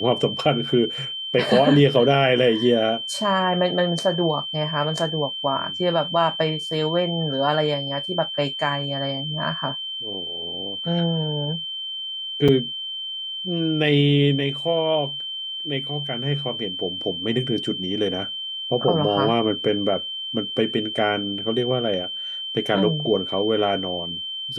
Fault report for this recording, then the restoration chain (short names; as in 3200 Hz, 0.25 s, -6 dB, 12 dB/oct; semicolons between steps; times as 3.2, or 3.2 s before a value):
tone 3100 Hz -28 dBFS
12.48–12.49 gap 5.2 ms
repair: notch 3100 Hz, Q 30; interpolate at 12.48, 5.2 ms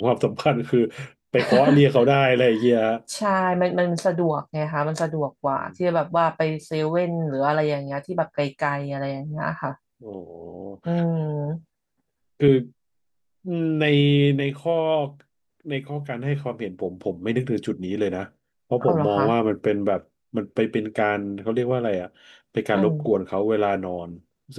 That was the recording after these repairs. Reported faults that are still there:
none